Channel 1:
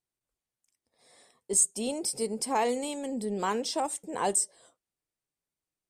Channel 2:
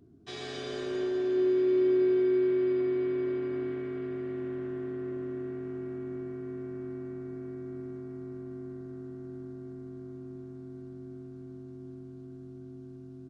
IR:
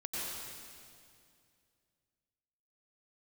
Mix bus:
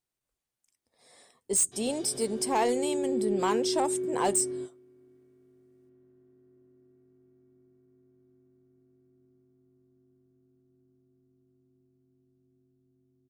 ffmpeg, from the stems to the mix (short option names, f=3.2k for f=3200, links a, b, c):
-filter_complex "[0:a]asoftclip=type=hard:threshold=-22dB,volume=1.5dB,asplit=2[a][b];[1:a]equalizer=f=1.8k:t=o:w=2.7:g=-11,adelay=1450,volume=-3dB[c];[b]apad=whole_len=650095[d];[c][d]sidechaingate=range=-21dB:threshold=-52dB:ratio=16:detection=peak[e];[a][e]amix=inputs=2:normalize=0"